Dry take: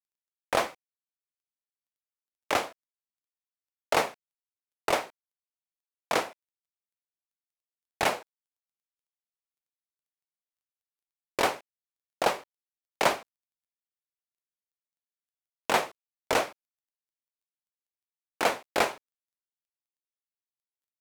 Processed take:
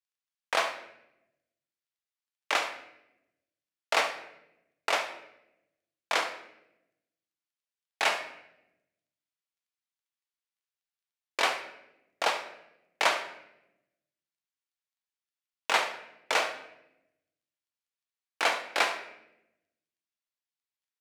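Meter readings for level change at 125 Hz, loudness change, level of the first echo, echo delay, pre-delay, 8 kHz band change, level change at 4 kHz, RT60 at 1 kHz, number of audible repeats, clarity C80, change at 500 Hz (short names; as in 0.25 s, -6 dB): under -15 dB, -0.5 dB, -13.5 dB, 70 ms, 3 ms, -1.0 dB, +3.0 dB, 0.75 s, 1, 12.0 dB, -4.5 dB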